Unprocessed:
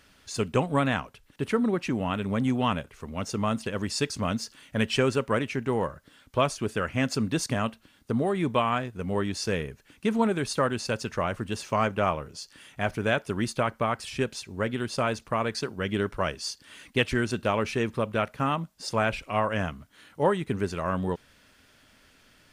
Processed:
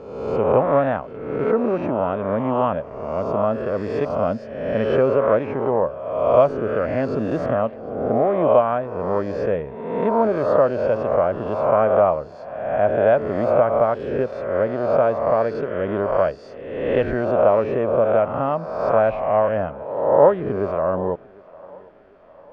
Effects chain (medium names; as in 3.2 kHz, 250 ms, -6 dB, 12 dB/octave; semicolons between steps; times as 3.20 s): reverse spectral sustain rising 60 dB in 1.11 s; low-pass 1.4 kHz 12 dB/octave; peaking EQ 600 Hz +13 dB 0.83 oct; on a send: thinning echo 750 ms, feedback 55%, high-pass 200 Hz, level -23 dB; on the sum: trim -1 dB